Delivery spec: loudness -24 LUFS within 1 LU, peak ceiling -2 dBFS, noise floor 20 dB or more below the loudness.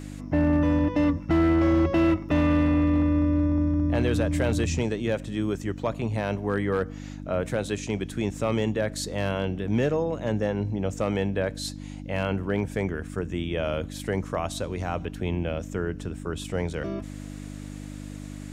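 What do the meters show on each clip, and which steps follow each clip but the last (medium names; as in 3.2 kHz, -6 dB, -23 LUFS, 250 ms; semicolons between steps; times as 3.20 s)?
clipped samples 0.9%; clipping level -16.0 dBFS; hum 50 Hz; highest harmonic 300 Hz; hum level -36 dBFS; loudness -26.5 LUFS; peak level -16.0 dBFS; loudness target -24.0 LUFS
-> clip repair -16 dBFS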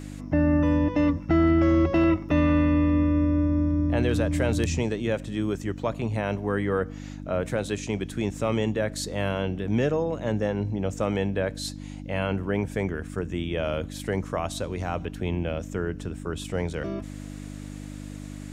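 clipped samples 0.0%; hum 50 Hz; highest harmonic 300 Hz; hum level -36 dBFS
-> de-hum 50 Hz, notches 6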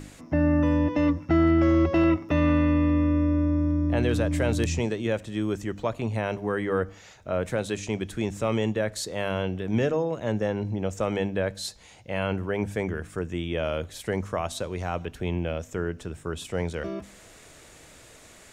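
hum not found; loudness -26.5 LUFS; peak level -9.5 dBFS; loudness target -24.0 LUFS
-> trim +2.5 dB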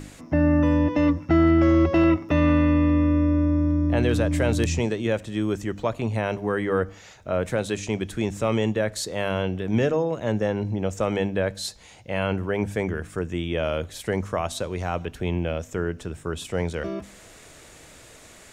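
loudness -24.0 LUFS; peak level -7.0 dBFS; noise floor -48 dBFS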